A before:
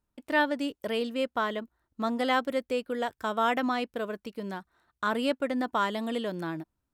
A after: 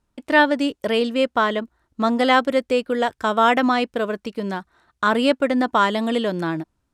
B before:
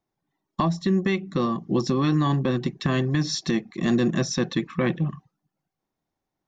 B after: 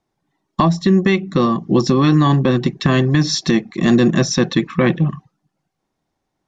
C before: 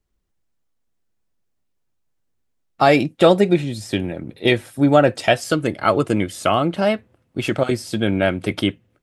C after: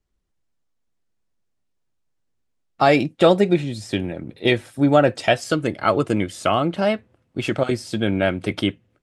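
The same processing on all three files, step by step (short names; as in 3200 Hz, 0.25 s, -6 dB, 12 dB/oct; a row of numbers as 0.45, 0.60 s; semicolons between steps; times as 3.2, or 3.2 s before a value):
LPF 9500 Hz 12 dB/oct; normalise peaks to -3 dBFS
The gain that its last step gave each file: +10.0, +8.5, -1.5 dB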